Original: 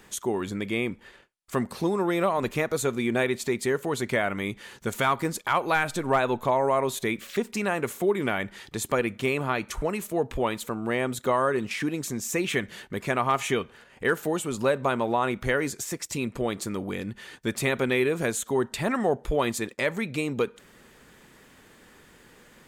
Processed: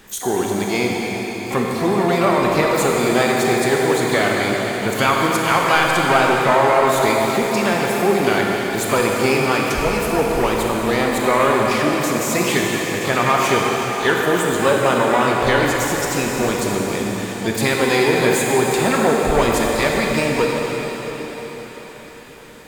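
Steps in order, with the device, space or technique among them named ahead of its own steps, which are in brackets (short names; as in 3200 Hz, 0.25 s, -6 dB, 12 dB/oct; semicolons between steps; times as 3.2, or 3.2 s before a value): shimmer-style reverb (harmoniser +12 st -9 dB; reverb RT60 5.0 s, pre-delay 23 ms, DRR -2 dB); gain +5.5 dB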